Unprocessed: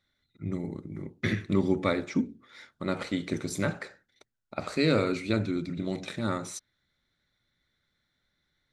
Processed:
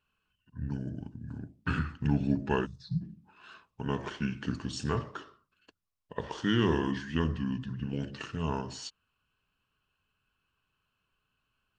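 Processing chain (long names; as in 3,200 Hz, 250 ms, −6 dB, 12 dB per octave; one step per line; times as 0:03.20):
gain on a spectral selection 0:01.97–0:02.24, 240–4,600 Hz −27 dB
wrong playback speed 45 rpm record played at 33 rpm
level −2.5 dB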